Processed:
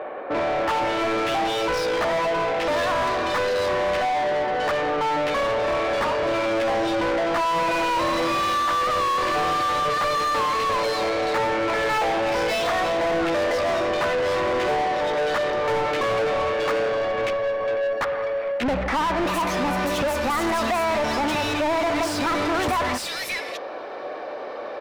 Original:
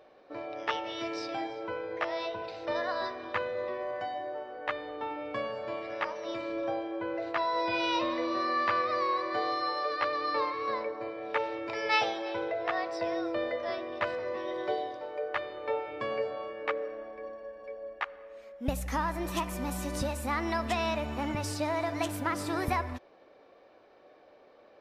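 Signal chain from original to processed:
multiband delay without the direct sound lows, highs 590 ms, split 2,600 Hz
mid-hump overdrive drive 36 dB, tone 2,300 Hz, clips at −15.5 dBFS

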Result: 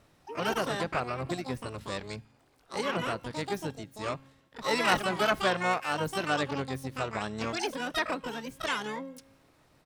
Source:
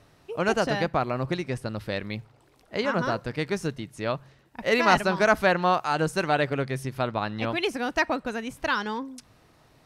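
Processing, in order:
tuned comb filter 270 Hz, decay 1.2 s, mix 40%
pitch-shifted copies added −7 semitones −13 dB, +12 semitones −3 dB
level −3 dB

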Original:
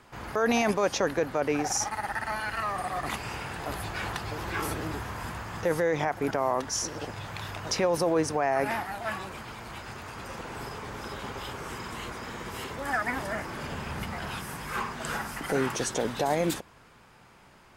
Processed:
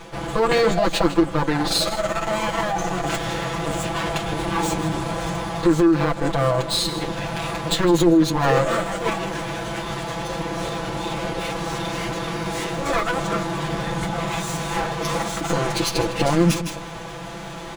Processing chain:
lower of the sound and its delayed copy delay 6.1 ms
single-tap delay 157 ms −15 dB
in parallel at −2 dB: downward compressor, threshold −36 dBFS, peak gain reduction 14.5 dB
on the sum: comb filter 5.9 ms, depth 78%
formants moved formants −6 semitones
reversed playback
upward compression, threshold −27 dBFS
reversed playback
level +5 dB

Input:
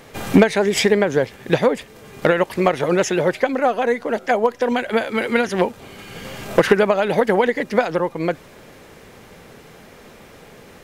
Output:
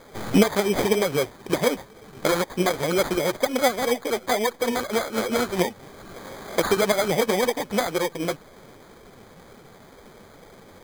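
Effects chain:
0:06.15–0:06.77: high-pass filter 260 Hz 12 dB per octave
in parallel at 0 dB: brickwall limiter −9 dBFS, peak gain reduction 8 dB
on the sum: flanger 2 Hz, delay 1.4 ms, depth 9.5 ms, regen +27%
decimation without filtering 16×
level −6.5 dB

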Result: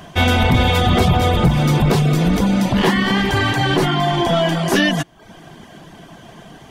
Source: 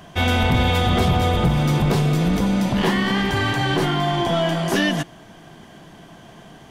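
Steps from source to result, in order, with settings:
reverb reduction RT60 0.53 s
level +5 dB

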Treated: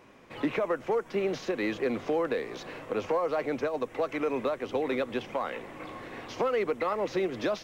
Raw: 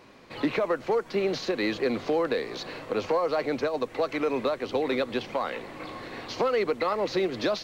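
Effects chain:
parametric band 4,300 Hz −11 dB 0.36 octaves
level −2.5 dB

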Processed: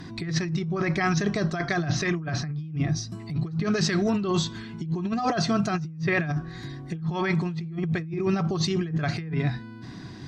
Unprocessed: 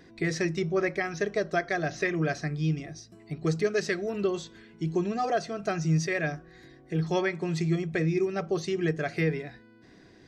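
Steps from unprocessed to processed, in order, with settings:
octave-band graphic EQ 125/250/500/1,000/2,000/4,000 Hz +11/+4/−11/+8/−4/+4 dB
treble cut that deepens with the level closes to 2,600 Hz, closed at −18 dBFS
compressor whose output falls as the input rises −32 dBFS, ratio −1
level +4.5 dB

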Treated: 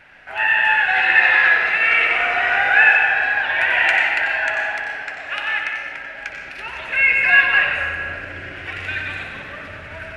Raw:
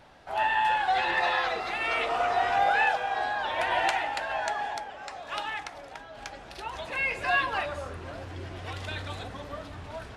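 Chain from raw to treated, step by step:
flat-topped bell 2,000 Hz +15 dB 1.2 octaves
feedback echo with a low-pass in the loop 62 ms, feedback 83%, low-pass 4,400 Hz, level −11 dB
convolution reverb RT60 1.9 s, pre-delay 90 ms, DRR 2 dB
level −1.5 dB

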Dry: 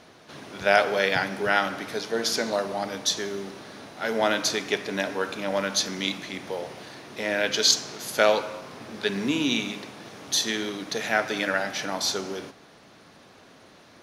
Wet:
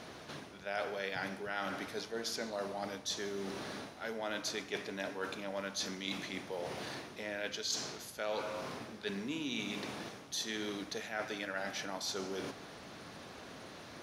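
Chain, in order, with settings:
reversed playback
downward compressor 4 to 1, threshold −41 dBFS, peak gain reduction 22 dB
reversed playback
noise in a band 60–220 Hz −68 dBFS
level +2 dB

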